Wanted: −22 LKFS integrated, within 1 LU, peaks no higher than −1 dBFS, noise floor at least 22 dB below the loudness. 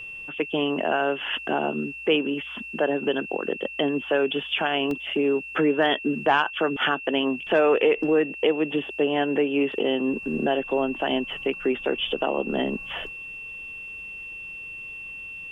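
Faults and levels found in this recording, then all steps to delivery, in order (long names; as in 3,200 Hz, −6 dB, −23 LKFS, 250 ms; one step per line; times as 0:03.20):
number of dropouts 1; longest dropout 2.3 ms; interfering tone 2,700 Hz; level of the tone −35 dBFS; integrated loudness −25.0 LKFS; sample peak −9.0 dBFS; target loudness −22.0 LKFS
→ repair the gap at 0:04.91, 2.3 ms
notch filter 2,700 Hz, Q 30
level +3 dB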